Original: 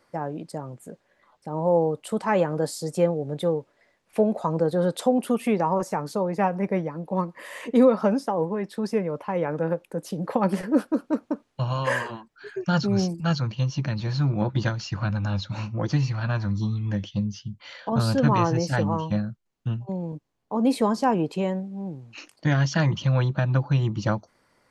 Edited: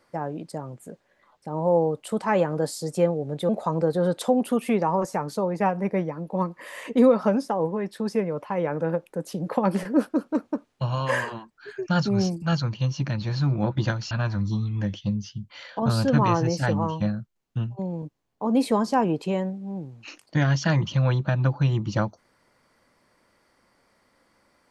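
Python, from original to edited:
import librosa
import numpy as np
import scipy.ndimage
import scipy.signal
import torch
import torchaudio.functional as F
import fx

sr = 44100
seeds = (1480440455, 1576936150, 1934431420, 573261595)

y = fx.edit(x, sr, fx.cut(start_s=3.49, length_s=0.78),
    fx.cut(start_s=14.89, length_s=1.32), tone=tone)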